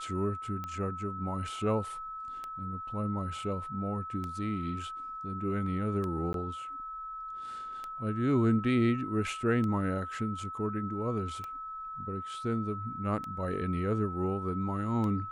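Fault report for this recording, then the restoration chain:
scratch tick 33 1/3 rpm −25 dBFS
whistle 1,300 Hz −38 dBFS
0:06.33–0:06.34: drop-out 12 ms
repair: click removal
notch filter 1,300 Hz, Q 30
repair the gap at 0:06.33, 12 ms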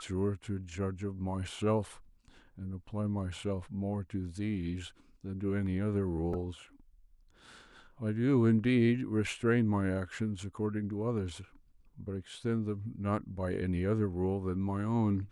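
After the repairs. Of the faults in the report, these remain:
none of them is left

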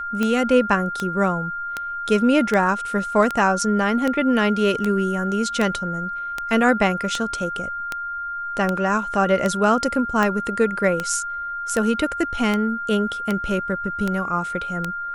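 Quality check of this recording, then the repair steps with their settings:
scratch tick 78 rpm −9 dBFS
whistle 1,400 Hz −26 dBFS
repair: click removal
notch filter 1,400 Hz, Q 30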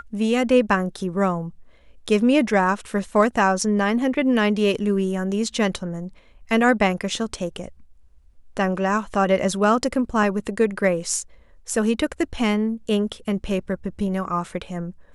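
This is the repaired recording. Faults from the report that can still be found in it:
none of them is left

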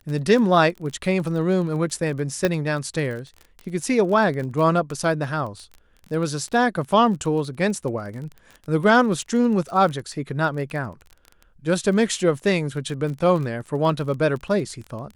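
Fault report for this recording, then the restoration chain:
surface crackle 24 per second −30 dBFS
0:02.45: click −7 dBFS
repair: click removal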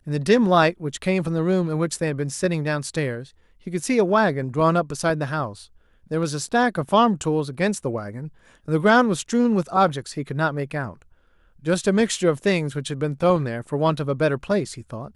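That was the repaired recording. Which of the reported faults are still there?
none of them is left

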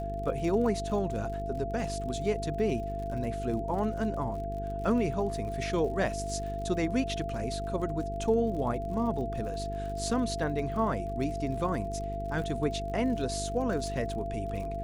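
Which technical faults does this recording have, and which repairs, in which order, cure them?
mains buzz 50 Hz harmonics 9 −37 dBFS
surface crackle 50 per second −39 dBFS
whistle 680 Hz −35 dBFS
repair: click removal
hum removal 50 Hz, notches 9
notch filter 680 Hz, Q 30

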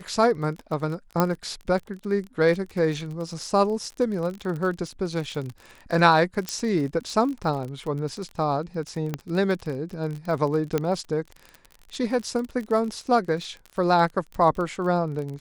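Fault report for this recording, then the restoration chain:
surface crackle 31 per second −31 dBFS
0:01.20: click −7 dBFS
0:06.49: click −13 dBFS
0:09.14: click −14 dBFS
0:10.78: click −11 dBFS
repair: click removal

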